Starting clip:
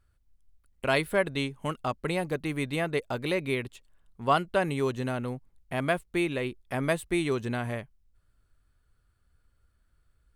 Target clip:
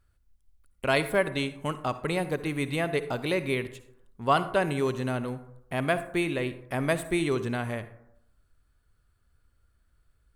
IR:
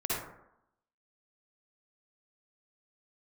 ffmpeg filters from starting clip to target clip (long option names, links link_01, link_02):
-filter_complex "[0:a]asplit=2[link_01][link_02];[1:a]atrim=start_sample=2205,highshelf=frequency=7000:gain=9.5[link_03];[link_02][link_03]afir=irnorm=-1:irlink=0,volume=-18.5dB[link_04];[link_01][link_04]amix=inputs=2:normalize=0"